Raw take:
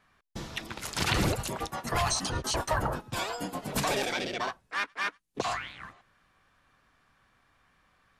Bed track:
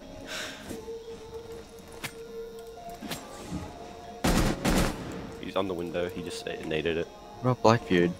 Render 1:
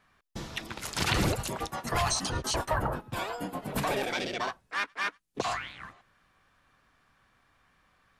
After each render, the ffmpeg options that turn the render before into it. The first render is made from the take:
ffmpeg -i in.wav -filter_complex "[0:a]asettb=1/sr,asplit=3[link_01][link_02][link_03];[link_01]atrim=end=2.654[link_04];[link_02]atrim=start=2.65:end=4.13,asetpts=PTS-STARTPTS,afade=type=in:duration=0.004:curve=qsin,afade=type=out:start_time=1.476:duration=0.004:curve=qsin,equalizer=frequency=6100:width=0.79:gain=-9[link_05];[link_03]atrim=start=4.126[link_06];[link_04][link_05]acrossfade=duration=0.004:curve1=hsin:curve2=qsin[link_07];[link_07][link_06]acrossfade=duration=0.004:curve1=qsin:curve2=hsin" out.wav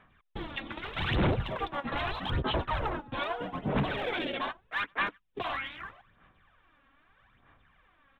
ffmpeg -i in.wav -af "aresample=8000,asoftclip=type=hard:threshold=-30.5dB,aresample=44100,aphaser=in_gain=1:out_gain=1:delay=3.7:decay=0.6:speed=0.8:type=sinusoidal" out.wav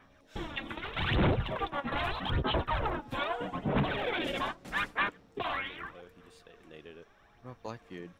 ffmpeg -i in.wav -i bed.wav -filter_complex "[1:a]volume=-21dB[link_01];[0:a][link_01]amix=inputs=2:normalize=0" out.wav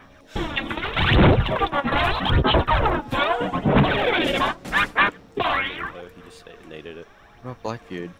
ffmpeg -i in.wav -af "volume=12dB" out.wav

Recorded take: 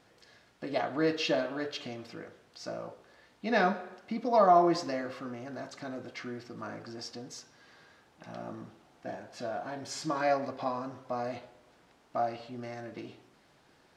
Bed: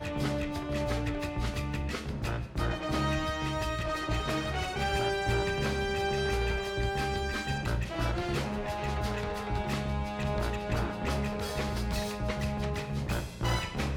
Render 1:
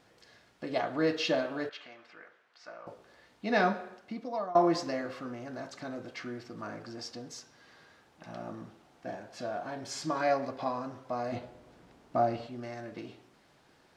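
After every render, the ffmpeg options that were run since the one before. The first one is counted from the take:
ffmpeg -i in.wav -filter_complex "[0:a]asettb=1/sr,asplit=3[link_01][link_02][link_03];[link_01]atrim=end=1.694[link_04];[link_02]atrim=start=1.69:end=2.87,asetpts=PTS-STARTPTS,afade=type=in:duration=0.004:curve=qsin,afade=type=out:start_time=1.176:duration=0.004:curve=qsin,bandpass=frequency=1600:width_type=q:width=1.2[link_05];[link_03]atrim=start=2.866[link_06];[link_04][link_05]acrossfade=duration=0.004:curve1=hsin:curve2=qsin[link_07];[link_07][link_06]acrossfade=duration=0.004:curve1=qsin:curve2=hsin,asettb=1/sr,asplit=3[link_08][link_09][link_10];[link_08]atrim=end=11.324[link_11];[link_09]atrim=start=11.32:end=12.47,asetpts=PTS-STARTPTS,afade=type=in:duration=0.004:curve=qsin,afade=type=out:start_time=1.146:duration=0.004:curve=qsin,lowshelf=frequency=490:gain=10[link_12];[link_10]atrim=start=12.466[link_13];[link_11][link_12]acrossfade=duration=0.004:curve1=hsin:curve2=qsin[link_14];[link_14][link_13]acrossfade=duration=0.004:curve1=qsin:curve2=hsin,asplit=2[link_15][link_16];[link_15]atrim=end=4.55,asetpts=PTS-STARTPTS,afade=type=out:start_time=3.83:duration=0.72:silence=0.0794328[link_17];[link_16]atrim=start=4.55,asetpts=PTS-STARTPTS,afade=type=in:duration=0.004:curve=hsin:silence=0.0794328[link_18];[link_17][link_18]concat=n=2:v=0:a=1" out.wav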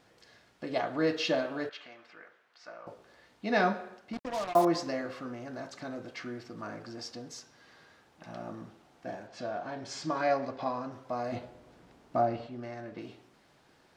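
ffmpeg -i in.wav -filter_complex "[0:a]asettb=1/sr,asplit=3[link_01][link_02][link_03];[link_01]atrim=end=4.134[link_04];[link_02]atrim=start=4.13:end=4.65,asetpts=PTS-STARTPTS,afade=type=in:duration=0.004:curve=qsin,afade=type=out:start_time=0.516:duration=0.004:curve=qsin,acrusher=bits=5:mix=0:aa=0.5[link_05];[link_03]atrim=start=4.646[link_06];[link_04][link_05]acrossfade=duration=0.004:curve1=hsin:curve2=qsin[link_07];[link_07][link_06]acrossfade=duration=0.004:curve1=qsin:curve2=hsin,asettb=1/sr,asplit=3[link_08][link_09][link_10];[link_08]atrim=end=9.274[link_11];[link_09]atrim=start=9.27:end=10.92,asetpts=PTS-STARTPTS,afade=type=in:duration=0.004:curve=qsin,afade=type=out:start_time=1.646:duration=0.004:curve=qsin,lowpass=6500[link_12];[link_10]atrim=start=10.916[link_13];[link_11][link_12]acrossfade=duration=0.004:curve1=hsin:curve2=qsin[link_14];[link_14][link_13]acrossfade=duration=0.004:curve1=qsin:curve2=hsin,asettb=1/sr,asplit=3[link_15][link_16][link_17];[link_15]atrim=end=12.214[link_18];[link_16]atrim=start=12.21:end=13.01,asetpts=PTS-STARTPTS,afade=type=in:duration=0.004:curve=qsin,afade=type=out:start_time=0.796:duration=0.004:curve=qsin,highshelf=frequency=5400:gain=-10.5[link_19];[link_17]atrim=start=13.006[link_20];[link_18][link_19]acrossfade=duration=0.004:curve1=hsin:curve2=qsin[link_21];[link_21][link_20]acrossfade=duration=0.004:curve1=qsin:curve2=hsin" out.wav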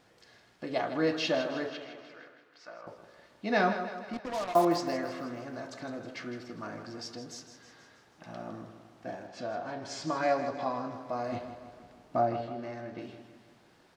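ffmpeg -i in.wav -af "aecho=1:1:159|318|477|636|795|954:0.282|0.158|0.0884|0.0495|0.0277|0.0155" out.wav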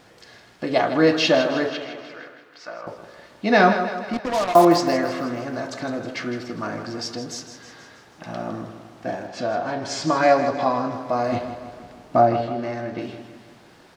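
ffmpeg -i in.wav -af "volume=11.5dB,alimiter=limit=-3dB:level=0:latency=1" out.wav

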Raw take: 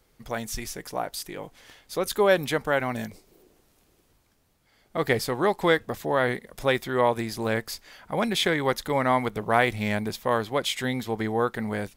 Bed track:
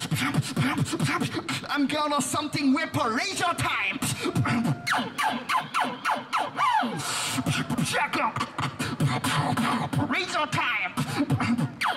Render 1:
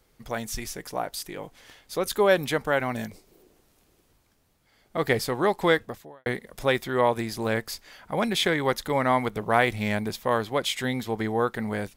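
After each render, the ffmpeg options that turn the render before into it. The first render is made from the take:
ffmpeg -i in.wav -filter_complex "[0:a]asplit=2[link_01][link_02];[link_01]atrim=end=6.26,asetpts=PTS-STARTPTS,afade=type=out:start_time=5.8:duration=0.46:curve=qua[link_03];[link_02]atrim=start=6.26,asetpts=PTS-STARTPTS,afade=type=in:duration=0.004:curve=hsin[link_04];[link_03][link_04]concat=n=2:v=0:a=1" out.wav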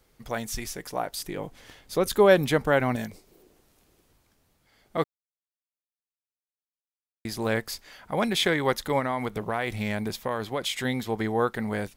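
ffmpeg -i in.wav -filter_complex "[0:a]asettb=1/sr,asplit=3[link_01][link_02][link_03];[link_01]atrim=end=1.194[link_04];[link_02]atrim=start=1.19:end=2.96,asetpts=PTS-STARTPTS,afade=type=in:duration=0.004:curve=qsin,afade=type=out:start_time=1.766:duration=0.004:curve=qsin,lowshelf=frequency=440:gain=6.5[link_05];[link_03]atrim=start=2.956[link_06];[link_04][link_05]acrossfade=duration=0.004:curve1=hsin:curve2=qsin[link_07];[link_07][link_06]acrossfade=duration=0.004:curve1=qsin:curve2=hsin,asettb=1/sr,asplit=3[link_08][link_09][link_10];[link_08]atrim=end=8.994[link_11];[link_09]atrim=start=8.99:end=10.85,asetpts=PTS-STARTPTS,afade=type=in:duration=0.004:curve=qsin,afade=type=out:start_time=1.856:duration=0.004:curve=qsin,acompressor=threshold=-24dB:ratio=4:attack=3.2:release=140:knee=1:detection=peak[link_12];[link_10]atrim=start=10.846[link_13];[link_11][link_12]acrossfade=duration=0.004:curve1=hsin:curve2=qsin[link_14];[link_14][link_13]acrossfade=duration=0.004:curve1=qsin:curve2=hsin,asplit=3[link_15][link_16][link_17];[link_15]atrim=end=5.04,asetpts=PTS-STARTPTS,afade=type=out:start_time=5.036:duration=0.004:curve=hsin[link_18];[link_16]atrim=start=5.04:end=7.25,asetpts=PTS-STARTPTS,volume=0[link_19];[link_17]atrim=start=7.25,asetpts=PTS-STARTPTS,afade=type=in:duration=0.004:curve=hsin[link_20];[link_18][link_19][link_20]concat=n=3:v=0:a=1" out.wav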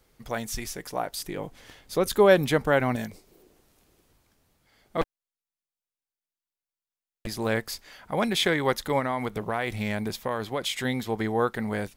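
ffmpeg -i in.wav -filter_complex "[0:a]asettb=1/sr,asplit=3[link_01][link_02][link_03];[link_01]atrim=end=5.014[link_04];[link_02]atrim=start=5.01:end=7.27,asetpts=PTS-STARTPTS,afade=type=in:duration=0.004:curve=qsin,afade=type=out:start_time=2.256:duration=0.004:curve=qsin,aeval=exprs='abs(val(0))':channel_layout=same[link_05];[link_03]atrim=start=7.266[link_06];[link_04][link_05]acrossfade=duration=0.004:curve1=hsin:curve2=qsin[link_07];[link_07][link_06]acrossfade=duration=0.004:curve1=qsin:curve2=hsin" out.wav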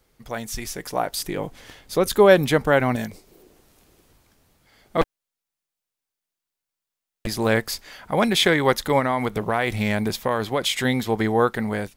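ffmpeg -i in.wav -af "dynaudnorm=framelen=290:gausssize=5:maxgain=6.5dB" out.wav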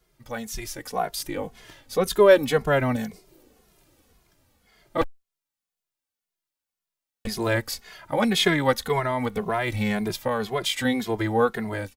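ffmpeg -i in.wav -filter_complex "[0:a]aeval=exprs='0.794*(cos(1*acos(clip(val(0)/0.794,-1,1)))-cos(1*PI/2))+0.0126*(cos(4*acos(clip(val(0)/0.794,-1,1)))-cos(4*PI/2))':channel_layout=same,asplit=2[link_01][link_02];[link_02]adelay=2.4,afreqshift=-1.9[link_03];[link_01][link_03]amix=inputs=2:normalize=1" out.wav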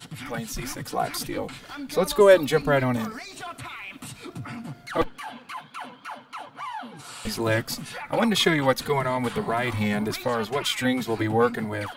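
ffmpeg -i in.wav -i bed.wav -filter_complex "[1:a]volume=-11.5dB[link_01];[0:a][link_01]amix=inputs=2:normalize=0" out.wav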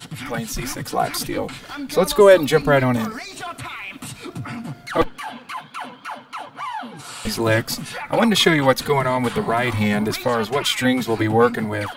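ffmpeg -i in.wav -af "volume=5.5dB,alimiter=limit=-2dB:level=0:latency=1" out.wav

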